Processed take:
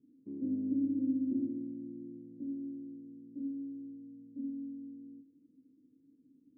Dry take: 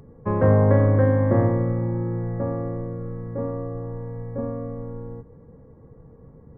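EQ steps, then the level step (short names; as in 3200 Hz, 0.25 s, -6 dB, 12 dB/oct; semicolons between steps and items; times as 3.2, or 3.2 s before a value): vocal tract filter u; vowel filter i; 0.0 dB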